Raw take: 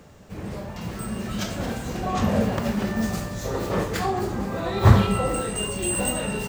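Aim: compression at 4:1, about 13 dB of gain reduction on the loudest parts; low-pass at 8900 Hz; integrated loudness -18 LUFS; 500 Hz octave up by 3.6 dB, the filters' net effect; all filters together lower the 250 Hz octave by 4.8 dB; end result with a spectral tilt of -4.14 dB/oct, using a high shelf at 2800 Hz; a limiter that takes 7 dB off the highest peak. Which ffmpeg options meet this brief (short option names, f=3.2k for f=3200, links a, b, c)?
-af "lowpass=8.9k,equalizer=f=250:t=o:g=-8.5,equalizer=f=500:t=o:g=6.5,highshelf=f=2.8k:g=4,acompressor=threshold=-25dB:ratio=4,volume=13dB,alimiter=limit=-8dB:level=0:latency=1"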